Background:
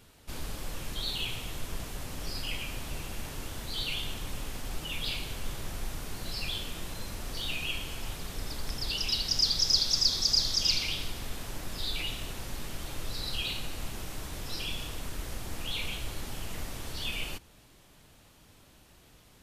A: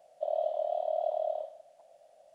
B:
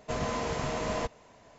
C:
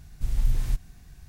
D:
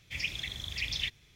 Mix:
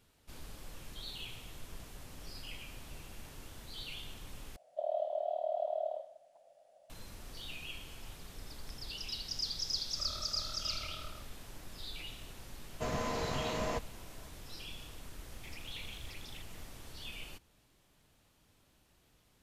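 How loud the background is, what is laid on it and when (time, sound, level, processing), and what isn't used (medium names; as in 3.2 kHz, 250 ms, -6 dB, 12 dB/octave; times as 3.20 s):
background -11 dB
4.56 s: replace with A -4 dB
9.77 s: add A -13 dB + comb filter that takes the minimum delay 0.68 ms
12.72 s: add B -4 dB
15.33 s: add D -2.5 dB + compression, threshold -47 dBFS
not used: C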